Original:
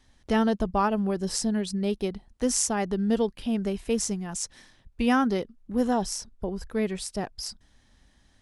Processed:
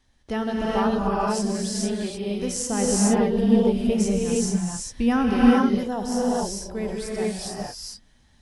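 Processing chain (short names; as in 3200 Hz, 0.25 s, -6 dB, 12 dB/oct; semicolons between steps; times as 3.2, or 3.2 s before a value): 2.57–5.33 low shelf 400 Hz +8 dB; non-linear reverb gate 0.48 s rising, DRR -5 dB; gain -4 dB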